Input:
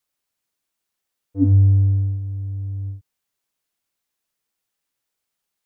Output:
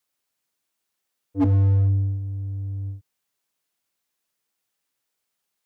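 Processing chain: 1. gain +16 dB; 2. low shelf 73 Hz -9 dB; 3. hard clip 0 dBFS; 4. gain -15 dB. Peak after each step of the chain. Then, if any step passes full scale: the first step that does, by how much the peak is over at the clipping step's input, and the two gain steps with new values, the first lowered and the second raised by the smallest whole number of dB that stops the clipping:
+9.0, +8.0, 0.0, -15.0 dBFS; step 1, 8.0 dB; step 1 +8 dB, step 4 -7 dB

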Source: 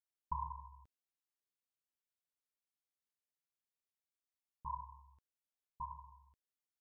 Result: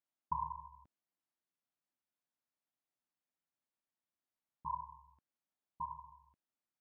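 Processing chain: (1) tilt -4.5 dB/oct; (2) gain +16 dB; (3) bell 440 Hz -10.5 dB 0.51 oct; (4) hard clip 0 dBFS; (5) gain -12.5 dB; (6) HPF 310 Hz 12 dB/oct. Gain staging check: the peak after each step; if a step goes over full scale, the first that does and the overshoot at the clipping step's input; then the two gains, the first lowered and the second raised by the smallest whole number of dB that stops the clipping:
-18.5, -2.5, -2.5, -2.5, -15.0, -24.0 dBFS; no overload

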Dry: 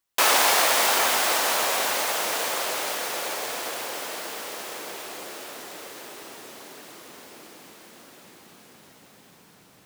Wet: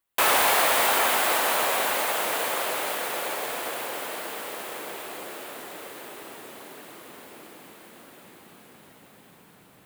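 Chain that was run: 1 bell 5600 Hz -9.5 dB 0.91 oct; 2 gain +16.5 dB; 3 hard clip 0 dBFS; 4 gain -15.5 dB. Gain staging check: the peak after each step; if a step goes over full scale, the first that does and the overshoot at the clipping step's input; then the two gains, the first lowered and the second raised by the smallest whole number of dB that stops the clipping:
-7.5, +9.0, 0.0, -15.5 dBFS; step 2, 9.0 dB; step 2 +7.5 dB, step 4 -6.5 dB

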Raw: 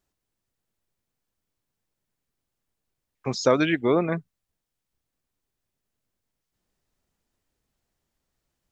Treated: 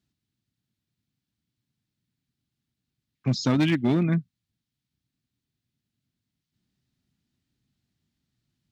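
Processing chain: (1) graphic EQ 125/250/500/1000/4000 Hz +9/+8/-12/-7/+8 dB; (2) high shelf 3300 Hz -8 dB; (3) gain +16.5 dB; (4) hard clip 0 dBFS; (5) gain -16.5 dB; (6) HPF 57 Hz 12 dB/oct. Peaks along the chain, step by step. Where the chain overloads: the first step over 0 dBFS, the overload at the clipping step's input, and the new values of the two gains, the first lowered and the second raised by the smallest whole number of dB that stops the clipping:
-8.5, -9.5, +7.0, 0.0, -16.5, -12.5 dBFS; step 3, 7.0 dB; step 3 +9.5 dB, step 5 -9.5 dB

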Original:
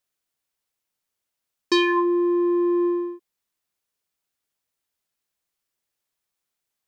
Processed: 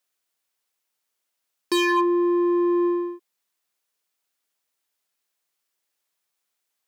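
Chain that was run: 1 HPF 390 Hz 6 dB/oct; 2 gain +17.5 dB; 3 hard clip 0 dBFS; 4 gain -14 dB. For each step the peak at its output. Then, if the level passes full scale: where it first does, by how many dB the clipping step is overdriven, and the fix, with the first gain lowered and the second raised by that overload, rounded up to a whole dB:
-7.5, +10.0, 0.0, -14.0 dBFS; step 2, 10.0 dB; step 2 +7.5 dB, step 4 -4 dB

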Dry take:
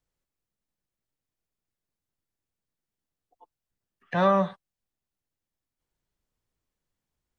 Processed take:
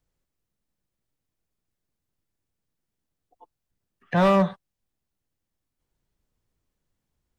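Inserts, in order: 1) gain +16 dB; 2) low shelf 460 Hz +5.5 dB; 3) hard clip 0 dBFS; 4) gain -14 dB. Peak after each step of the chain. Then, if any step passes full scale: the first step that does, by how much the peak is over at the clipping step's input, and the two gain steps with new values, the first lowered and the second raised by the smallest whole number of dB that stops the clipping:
+5.5, +6.5, 0.0, -14.0 dBFS; step 1, 6.5 dB; step 1 +9 dB, step 4 -7 dB

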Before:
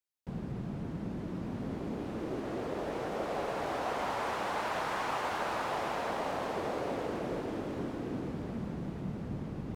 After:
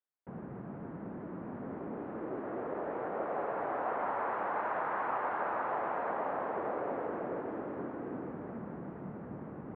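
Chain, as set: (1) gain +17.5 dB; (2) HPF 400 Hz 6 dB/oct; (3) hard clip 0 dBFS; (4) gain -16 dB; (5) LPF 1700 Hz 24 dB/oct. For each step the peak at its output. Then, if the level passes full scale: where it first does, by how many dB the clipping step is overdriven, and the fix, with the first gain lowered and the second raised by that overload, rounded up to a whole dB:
-4.0, -5.5, -5.5, -21.5, -22.0 dBFS; no overload

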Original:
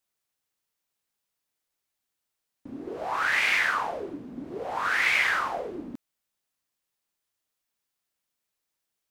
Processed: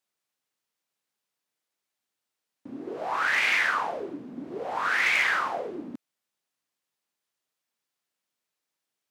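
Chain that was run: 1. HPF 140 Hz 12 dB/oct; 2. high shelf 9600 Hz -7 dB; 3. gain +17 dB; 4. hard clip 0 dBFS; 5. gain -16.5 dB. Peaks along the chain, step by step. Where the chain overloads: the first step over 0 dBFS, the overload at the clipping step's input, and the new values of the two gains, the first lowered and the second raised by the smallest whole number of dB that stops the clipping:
-11.0, -11.5, +5.5, 0.0, -16.5 dBFS; step 3, 5.5 dB; step 3 +11 dB, step 5 -10.5 dB

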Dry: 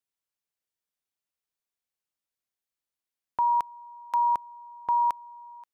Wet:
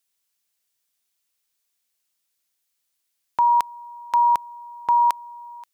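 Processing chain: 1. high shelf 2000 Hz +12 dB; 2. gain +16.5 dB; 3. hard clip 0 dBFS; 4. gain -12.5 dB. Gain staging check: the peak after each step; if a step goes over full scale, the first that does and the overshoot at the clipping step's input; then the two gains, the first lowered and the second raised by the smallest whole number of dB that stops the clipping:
-9.5, +7.0, 0.0, -12.5 dBFS; step 2, 7.0 dB; step 2 +9.5 dB, step 4 -5.5 dB

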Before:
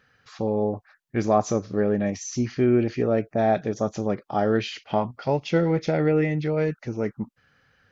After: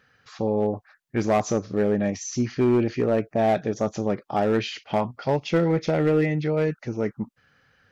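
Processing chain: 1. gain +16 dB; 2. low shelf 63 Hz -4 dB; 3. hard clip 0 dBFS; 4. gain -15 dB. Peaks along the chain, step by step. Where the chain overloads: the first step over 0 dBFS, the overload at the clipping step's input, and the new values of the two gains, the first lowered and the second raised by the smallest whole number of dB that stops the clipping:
+8.0, +7.5, 0.0, -15.0 dBFS; step 1, 7.5 dB; step 1 +8 dB, step 4 -7 dB

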